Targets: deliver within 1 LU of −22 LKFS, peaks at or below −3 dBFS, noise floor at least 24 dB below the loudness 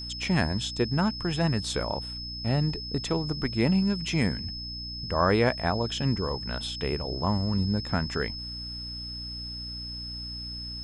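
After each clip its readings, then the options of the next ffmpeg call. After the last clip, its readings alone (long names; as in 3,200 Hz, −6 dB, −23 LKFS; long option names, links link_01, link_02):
mains hum 60 Hz; hum harmonics up to 300 Hz; level of the hum −40 dBFS; interfering tone 5,200 Hz; level of the tone −36 dBFS; integrated loudness −28.5 LKFS; sample peak −8.5 dBFS; target loudness −22.0 LKFS
→ -af "bandreject=frequency=60:width_type=h:width=4,bandreject=frequency=120:width_type=h:width=4,bandreject=frequency=180:width_type=h:width=4,bandreject=frequency=240:width_type=h:width=4,bandreject=frequency=300:width_type=h:width=4"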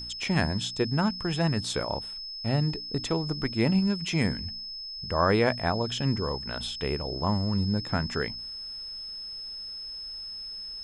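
mains hum none found; interfering tone 5,200 Hz; level of the tone −36 dBFS
→ -af "bandreject=frequency=5200:width=30"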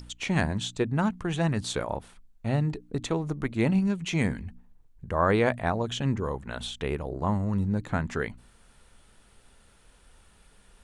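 interfering tone none found; integrated loudness −28.5 LKFS; sample peak −8.5 dBFS; target loudness −22.0 LKFS
→ -af "volume=6.5dB,alimiter=limit=-3dB:level=0:latency=1"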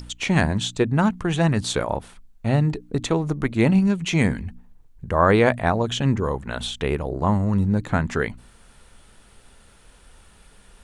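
integrated loudness −22.0 LKFS; sample peak −3.0 dBFS; background noise floor −52 dBFS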